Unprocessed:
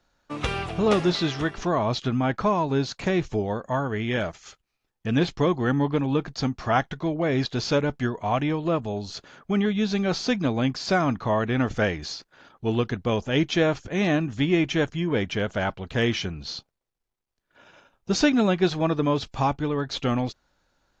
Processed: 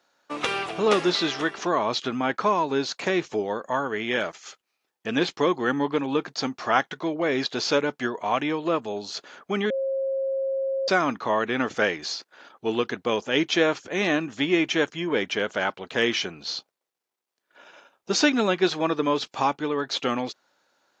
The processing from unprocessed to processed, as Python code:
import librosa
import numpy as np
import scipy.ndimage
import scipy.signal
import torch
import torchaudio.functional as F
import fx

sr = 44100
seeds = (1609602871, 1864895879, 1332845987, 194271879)

y = fx.edit(x, sr, fx.bleep(start_s=9.7, length_s=1.18, hz=538.0, db=-24.0), tone=tone)
y = scipy.signal.sosfilt(scipy.signal.butter(2, 350.0, 'highpass', fs=sr, output='sos'), y)
y = fx.dynamic_eq(y, sr, hz=680.0, q=2.5, threshold_db=-38.0, ratio=4.0, max_db=-5)
y = y * 10.0 ** (3.5 / 20.0)